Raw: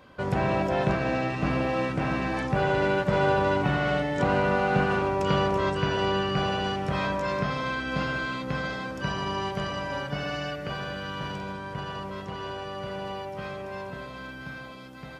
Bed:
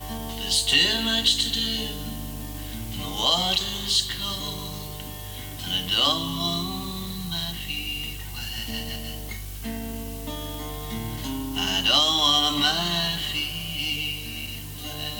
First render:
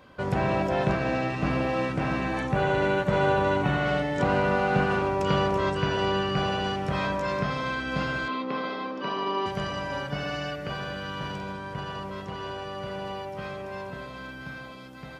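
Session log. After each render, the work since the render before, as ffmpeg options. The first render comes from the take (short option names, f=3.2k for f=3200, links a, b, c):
-filter_complex "[0:a]asettb=1/sr,asplit=3[a][b][c];[a]atrim=end=2.214[d];[b]atrim=start=2.21:end=3.86,asetpts=PTS-STARTPTS,afade=t=in:d=0.004:c=qsin,afade=t=out:st=1.646:d=0.004:c=qsin,bandreject=f=5k:w=6.7[e];[c]atrim=start=3.856[f];[d][e]acrossfade=d=0.004:c1=hsin:c2=qsin[g];[g][f]acrossfade=d=0.004:c1=qsin:c2=hsin,asettb=1/sr,asplit=3[h][i][j];[h]atrim=end=8.284[k];[i]atrim=start=8.28:end=9.46,asetpts=PTS-STARTPTS,afade=t=in:d=0.004:c=qsin,afade=t=out:st=1.176:d=0.004:c=qsin,highpass=f=220:w=0.5412,highpass=f=220:w=1.3066,equalizer=f=260:t=q:w=4:g=4,equalizer=f=410:t=q:w=4:g=5,equalizer=f=1.1k:t=q:w=4:g=6,equalizer=f=1.6k:t=q:w=4:g=-6,lowpass=f=4.5k:w=0.5412,lowpass=f=4.5k:w=1.3066[l];[j]atrim=start=9.456[m];[k][l]acrossfade=d=0.004:c1=hsin:c2=qsin[n];[n][m]acrossfade=d=0.004:c1=qsin:c2=hsin"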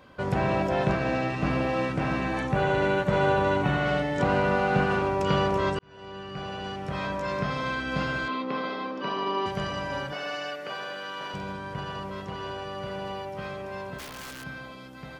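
-filter_complex "[0:a]asettb=1/sr,asplit=3[a][b][c];[a]atrim=end=10.124[d];[b]atrim=start=10.12:end=11.34,asetpts=PTS-STARTPTS,afade=t=in:d=0.004:c=qsin,afade=t=out:st=1.216:d=0.004:c=qsin,highpass=400[e];[c]atrim=start=11.336[f];[d][e]acrossfade=d=0.004:c1=hsin:c2=qsin[g];[g][f]acrossfade=d=0.004:c1=qsin:c2=hsin,asplit=3[h][i][j];[h]afade=t=out:st=13.98:d=0.02[k];[i]aeval=exprs='(mod(50.1*val(0)+1,2)-1)/50.1':c=same,afade=t=in:st=13.98:d=0.02,afade=t=out:st=14.43:d=0.02[l];[j]afade=t=in:st=14.43:d=0.02[m];[k][l][m]amix=inputs=3:normalize=0,asplit=2[n][o];[n]atrim=end=5.79,asetpts=PTS-STARTPTS,afade=t=out:st=5.786:d=0.004:c=hsin[p];[o]atrim=start=5.79,asetpts=PTS-STARTPTS,afade=t=in:d=1.85[q];[p][q]concat=n=2:v=0:a=1"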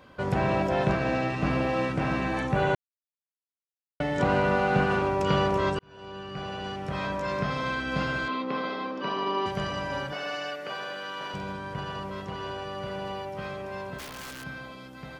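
-filter_complex "[0:a]asettb=1/sr,asplit=3[a][b][c];[a]atrim=end=5.704[d];[b]atrim=start=5.7:end=6.31,asetpts=PTS-STARTPTS,afade=t=in:d=0.004:c=qsin,afade=t=out:st=0.606:d=0.004:c=qsin,bandreject=f=2k:w=12[e];[c]atrim=start=6.306[f];[d][e]acrossfade=d=0.004:c1=hsin:c2=qsin[g];[g][f]acrossfade=d=0.004:c1=qsin:c2=hsin,asplit=3[h][i][j];[h]atrim=end=2.75,asetpts=PTS-STARTPTS,afade=t=out:st=2.746:d=0.004:c=hsin[k];[i]atrim=start=2.75:end=4,asetpts=PTS-STARTPTS,volume=0[l];[j]atrim=start=4,asetpts=PTS-STARTPTS,afade=t=in:d=0.004:c=hsin[m];[k][l][m]concat=n=3:v=0:a=1"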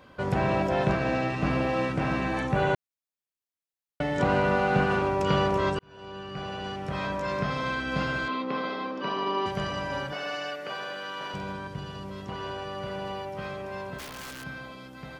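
-filter_complex "[0:a]asettb=1/sr,asplit=3[a][b][c];[a]atrim=end=11.674[d];[b]atrim=start=11.67:end=12.29,asetpts=PTS-STARTPTS,afade=t=in:d=0.004:c=qsin,afade=t=out:st=0.616:d=0.004:c=qsin,acrossover=split=400|3000[e][f][g];[f]acompressor=threshold=-44dB:ratio=4:attack=3.2:release=140:knee=2.83:detection=peak[h];[e][h][g]amix=inputs=3:normalize=0[i];[c]atrim=start=12.286[j];[d][i]acrossfade=d=0.004:c1=hsin:c2=qsin[k];[k][j]acrossfade=d=0.004:c1=qsin:c2=hsin"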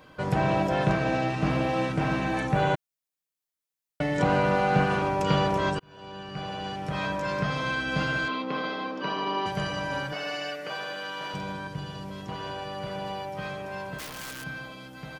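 -af "highshelf=f=5.9k:g=4.5,aecho=1:1:6.4:0.38"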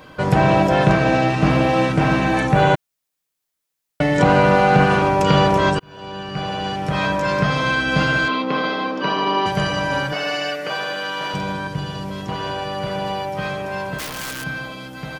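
-af "volume=9.5dB,alimiter=limit=-3dB:level=0:latency=1"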